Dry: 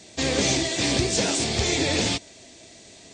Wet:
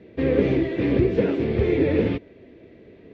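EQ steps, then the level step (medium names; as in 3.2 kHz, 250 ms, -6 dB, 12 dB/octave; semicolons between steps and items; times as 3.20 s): low-pass 2.3 kHz 24 dB/octave; resonant low shelf 580 Hz +6.5 dB, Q 3; -3.0 dB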